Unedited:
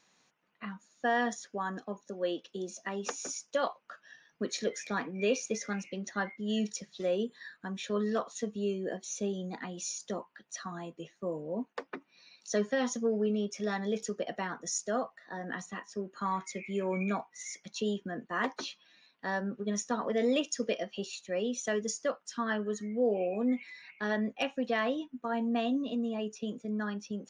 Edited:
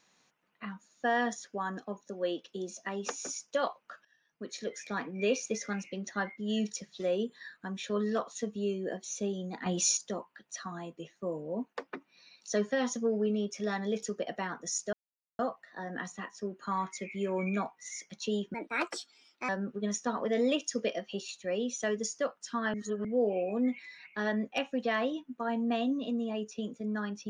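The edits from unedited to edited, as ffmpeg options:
-filter_complex "[0:a]asplit=9[a][b][c][d][e][f][g][h][i];[a]atrim=end=4.05,asetpts=PTS-STARTPTS,afade=t=out:st=4.046:d=0.004:c=hsin:silence=0.11885[j];[b]atrim=start=4.05:end=9.662,asetpts=PTS-STARTPTS,afade=t=in:d=1.15:silence=0.11885[k];[c]atrim=start=9.658:end=9.972,asetpts=PTS-STARTPTS,volume=10dB[l];[d]atrim=start=9.968:end=14.93,asetpts=PTS-STARTPTS,afade=t=out:st=4.958:d=0.004:c=hsin,apad=pad_dur=0.46[m];[e]atrim=start=14.93:end=18.084,asetpts=PTS-STARTPTS,afade=t=in:d=0.004:c=hsin[n];[f]atrim=start=18.08:end=19.33,asetpts=PTS-STARTPTS,asetrate=58212,aresample=44100,atrim=end_sample=41761,asetpts=PTS-STARTPTS[o];[g]atrim=start=19.326:end=22.582[p];[h]atrim=start=22.578:end=22.892,asetpts=PTS-STARTPTS,areverse[q];[i]atrim=start=22.888[r];[j][k]concat=n=2:v=0:a=1[s];[s][l]acrossfade=d=0.004:c1=hsin:c2=hsin[t];[m][n]concat=n=2:v=0:a=1[u];[t][u]acrossfade=d=0.004:c1=hsin:c2=hsin[v];[v][o]acrossfade=d=0.004:c1=hsin:c2=hsin[w];[w][p]acrossfade=d=0.004:c1=hsin:c2=hsin[x];[x][q]acrossfade=d=0.004:c1=hsin:c2=hsin[y];[y][r]acrossfade=d=0.004:c1=hsin:c2=hsin"

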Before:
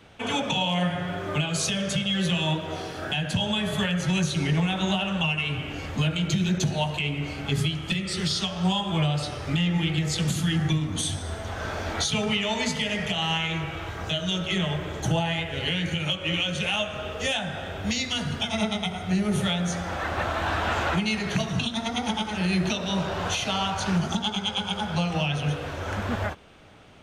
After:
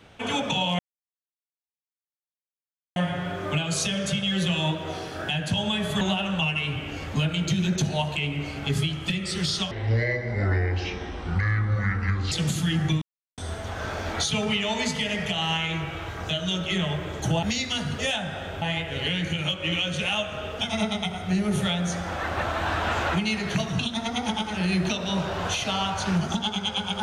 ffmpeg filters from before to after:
-filter_complex "[0:a]asplit=11[a][b][c][d][e][f][g][h][i][j][k];[a]atrim=end=0.79,asetpts=PTS-STARTPTS,afade=t=out:st=0.786:d=0.004:c=hsin,apad=pad_dur=2.17[l];[b]atrim=start=0.79:end=3.842,asetpts=PTS-STARTPTS,afade=t=in:d=0.004:c=hsin[m];[c]atrim=start=4.828:end=8.534[n];[d]atrim=start=8.53:end=10.12,asetpts=PTS-STARTPTS,asetrate=26901,aresample=44100,atrim=end_sample=114949,asetpts=PTS-STARTPTS[o];[e]atrim=start=10.116:end=10.82,asetpts=PTS-STARTPTS,afade=t=out:st=0.7:d=0.004:c=hsin[p];[f]atrim=start=10.82:end=11.18,asetpts=PTS-STARTPTS,volume=0[q];[g]atrim=start=11.18:end=15.232,asetpts=PTS-STARTPTS,afade=t=in:d=0.004:c=hsin[r];[h]atrim=start=17.828:end=18.392[s];[i]atrim=start=17.198:end=17.832[t];[j]atrim=start=15.228:end=17.202[u];[k]atrim=start=18.388[v];[l][m]concat=n=2:v=0:a=1[w];[w][n]acrossfade=d=0.004:c1=hsin:c2=hsin[x];[x][o]acrossfade=d=0.004:c1=hsin:c2=hsin[y];[p][q][r]concat=n=3:v=0:a=1[z];[y][z]acrossfade=d=0.004:c1=hsin:c2=hsin[aa];[aa][s]acrossfade=d=0.004:c1=hsin:c2=hsin[ab];[ab][t]acrossfade=d=0.004:c1=hsin:c2=hsin[ac];[ac][u]acrossfade=d=0.004:c1=hsin:c2=hsin[ad];[ad][v]acrossfade=d=0.004:c1=hsin:c2=hsin"

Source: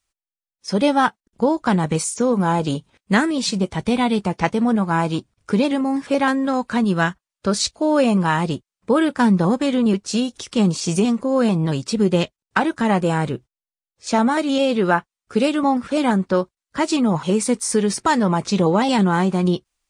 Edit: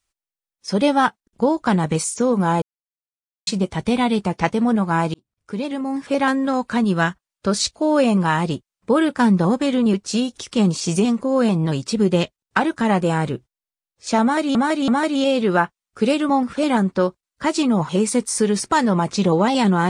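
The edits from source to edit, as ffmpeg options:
-filter_complex "[0:a]asplit=6[a][b][c][d][e][f];[a]atrim=end=2.62,asetpts=PTS-STARTPTS,afade=t=out:st=2.616:d=0.004:c=hsin[g];[b]atrim=start=2.62:end=3.47,asetpts=PTS-STARTPTS,volume=0[h];[c]atrim=start=3.47:end=5.14,asetpts=PTS-STARTPTS,afade=t=in:d=0.004:c=hsin,afade=t=out:st=1.666:d=0.004:c=hsin[i];[d]atrim=start=5.14:end=14.552,asetpts=PTS-STARTPTS,afade=t=in:d=1.14[j];[e]atrim=start=14.218:end=14.552[k];[f]atrim=start=14.218[l];[g][h][i][j]concat=n=4:v=0:a=1[m];[m][k]acrossfade=d=0.004:c1=hsin:c2=hsin[n];[n][l]acrossfade=d=0.004:c1=hsin:c2=hsin"

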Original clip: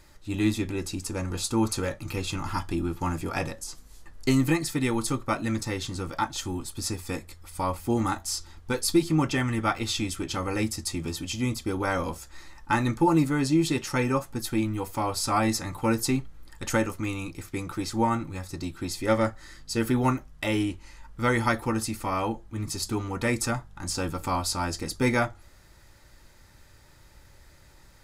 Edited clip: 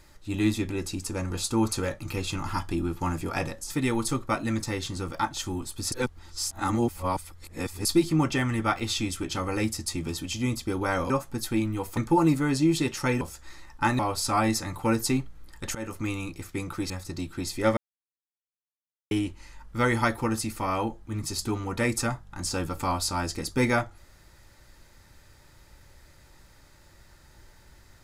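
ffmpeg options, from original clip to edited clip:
-filter_complex "[0:a]asplit=12[a][b][c][d][e][f][g][h][i][j][k][l];[a]atrim=end=3.702[m];[b]atrim=start=4.688:end=6.912[n];[c]atrim=start=6.908:end=8.842,asetpts=PTS-STARTPTS,areverse[o];[d]atrim=start=8.838:end=12.092[p];[e]atrim=start=14.108:end=14.982[q];[f]atrim=start=12.868:end=14.112[r];[g]atrim=start=12.088:end=12.872[s];[h]atrim=start=14.978:end=16.74,asetpts=PTS-STARTPTS,afade=t=out:st=1.758:d=0.004:c=hsin:silence=0.0749894[t];[i]atrim=start=16.74:end=17.892,asetpts=PTS-STARTPTS,afade=t=in:d=0.25:silence=0.0749894[u];[j]atrim=start=18.338:end=19.21,asetpts=PTS-STARTPTS,afade=t=out:st=0.868:d=0.004:c=hsin[v];[k]atrim=start=19.21:end=20.55,asetpts=PTS-STARTPTS,volume=0[w];[l]atrim=start=20.55,asetpts=PTS-STARTPTS,afade=t=in:d=0.004:c=hsin[x];[m][n]acrossfade=d=0.004:c1=hsin:c2=hsin[y];[y][o]acrossfade=d=0.004:c1=hsin:c2=hsin[z];[z][p]acrossfade=d=0.004:c1=hsin:c2=hsin[aa];[aa][q]acrossfade=d=0.004:c1=hsin:c2=hsin[ab];[ab][r]acrossfade=d=0.004:c1=hsin:c2=hsin[ac];[ac][s]acrossfade=d=0.004:c1=hsin:c2=hsin[ad];[t][u]concat=n=2:v=0:a=1[ae];[ad][ae]acrossfade=d=0.004:c1=hsin:c2=hsin[af];[v][w][x]concat=n=3:v=0:a=1[ag];[af][ag]acrossfade=d=0.004:c1=hsin:c2=hsin"

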